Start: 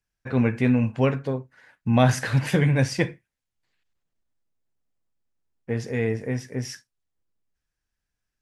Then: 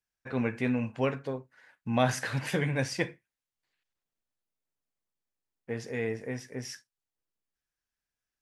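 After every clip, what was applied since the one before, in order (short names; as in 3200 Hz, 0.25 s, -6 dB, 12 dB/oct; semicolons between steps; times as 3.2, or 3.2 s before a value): low shelf 200 Hz -10 dB; gain -4.5 dB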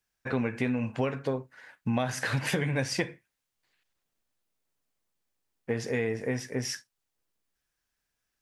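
compressor 10:1, threshold -32 dBFS, peak gain reduction 14 dB; gain +7.5 dB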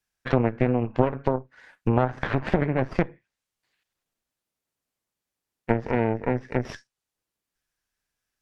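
added harmonics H 3 -14 dB, 4 -10 dB, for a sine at -13.5 dBFS; treble ducked by the level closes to 1100 Hz, closed at -27.5 dBFS; gain +7.5 dB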